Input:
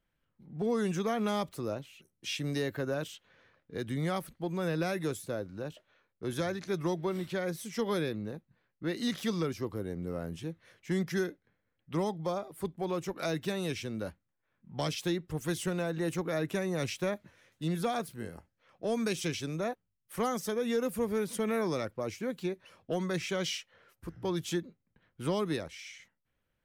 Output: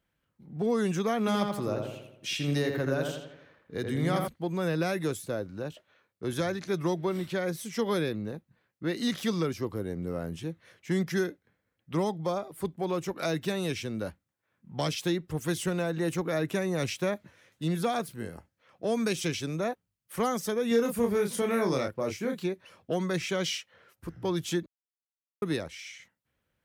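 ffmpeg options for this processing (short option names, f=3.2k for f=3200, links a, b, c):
-filter_complex "[0:a]asettb=1/sr,asplit=3[a][b][c];[a]atrim=end=1.194[d];[b]atrim=start=1.19:end=4.28,asetpts=PTS-STARTPTS,afade=t=in:d=0.004:c=qsin,afade=t=out:st=3.086:d=0.004:c=qsin,asplit=2[e][f];[f]adelay=83,lowpass=f=2.7k:p=1,volume=-3.5dB,asplit=2[g][h];[h]adelay=83,lowpass=f=2.7k:p=1,volume=0.52,asplit=2[i][j];[j]adelay=83,lowpass=f=2.7k:p=1,volume=0.52,asplit=2[k][l];[l]adelay=83,lowpass=f=2.7k:p=1,volume=0.52,asplit=2[m][n];[n]adelay=83,lowpass=f=2.7k:p=1,volume=0.52,asplit=2[o][p];[p]adelay=83,lowpass=f=2.7k:p=1,volume=0.52,asplit=2[q][r];[r]adelay=83,lowpass=f=2.7k:p=1,volume=0.52[s];[e][g][i][k][m][o][q][s]amix=inputs=8:normalize=0,atrim=end_sample=136269[t];[c]atrim=start=4.276[u];[d][t]acrossfade=d=0.004:c1=hsin:c2=qsin[v];[v][u]acrossfade=d=0.004:c1=qsin:c2=hsin,asettb=1/sr,asplit=3[w][x][y];[w]atrim=end=20.684[z];[x]atrim=start=20.68:end=22.44,asetpts=PTS-STARTPTS,afade=t=in:d=0.004:c=qsin,afade=t=out:st=1.756:d=0.004:c=qsin,asplit=2[aa][ab];[ab]adelay=30,volume=-4.5dB[ac];[aa][ac]amix=inputs=2:normalize=0,atrim=end_sample=77616[ad];[y]atrim=start=22.436[ae];[z][ad]acrossfade=d=0.004:c1=hsin:c2=qsin[af];[af][ae]acrossfade=d=0.004:c1=qsin:c2=hsin,asplit=3[ag][ah][ai];[ag]atrim=end=24.66,asetpts=PTS-STARTPTS,afade=t=out:st=24.656:d=0.004:c=hsin[aj];[ah]atrim=start=24.66:end=25.42,asetpts=PTS-STARTPTS,volume=0[ak];[ai]atrim=start=25.42,asetpts=PTS-STARTPTS,afade=t=in:d=0.004:c=hsin[al];[aj][ak][al]concat=n=3:v=0:a=1,highpass=47,volume=3dB"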